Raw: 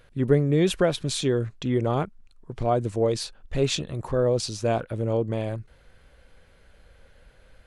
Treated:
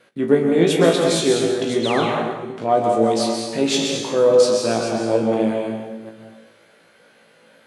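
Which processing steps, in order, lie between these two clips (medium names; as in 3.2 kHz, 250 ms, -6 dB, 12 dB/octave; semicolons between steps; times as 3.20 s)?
chunks repeated in reverse 290 ms, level -8.5 dB; Chebyshev shaper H 4 -27 dB, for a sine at -7 dBFS; high-pass 180 Hz 24 dB/octave; flutter echo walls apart 3.1 m, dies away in 0.23 s; painted sound fall, 1.83–2.05 s, 990–4400 Hz -32 dBFS; plate-style reverb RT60 1 s, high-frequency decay 0.95×, pre-delay 115 ms, DRR 1.5 dB; gate with hold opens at -48 dBFS; trim +3.5 dB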